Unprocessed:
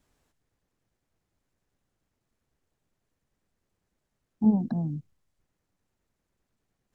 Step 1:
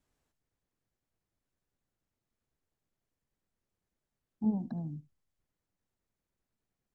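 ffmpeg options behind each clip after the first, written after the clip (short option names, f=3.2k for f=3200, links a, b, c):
-af "aecho=1:1:73:0.0944,volume=-8.5dB"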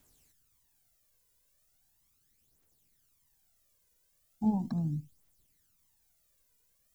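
-af "crystalizer=i=4.5:c=0,aphaser=in_gain=1:out_gain=1:delay=2.1:decay=0.58:speed=0.38:type=triangular,volume=3dB"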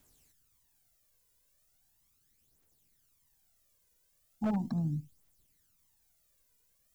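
-af "aeval=exprs='0.0596*(abs(mod(val(0)/0.0596+3,4)-2)-1)':c=same"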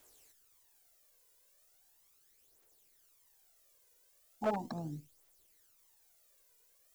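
-af "lowshelf=f=290:t=q:w=1.5:g=-12,volume=4dB"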